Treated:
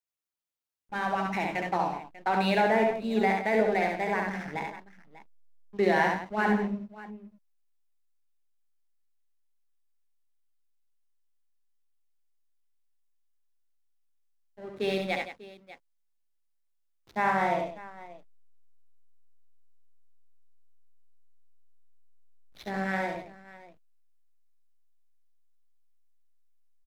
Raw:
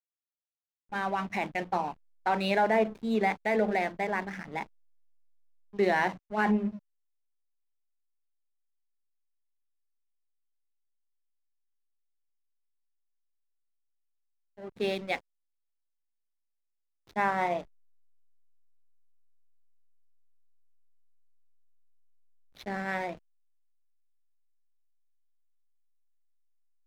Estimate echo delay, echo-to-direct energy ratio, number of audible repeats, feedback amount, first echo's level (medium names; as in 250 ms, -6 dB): 68 ms, -2.0 dB, 3, no regular repeats, -3.5 dB